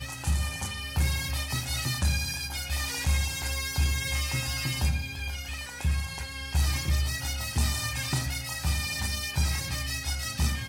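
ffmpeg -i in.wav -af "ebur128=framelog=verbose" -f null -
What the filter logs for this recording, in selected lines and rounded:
Integrated loudness:
  I:         -29.4 LUFS
  Threshold: -39.4 LUFS
Loudness range:
  LRA:         1.3 LU
  Threshold: -49.3 LUFS
  LRA low:   -30.0 LUFS
  LRA high:  -28.7 LUFS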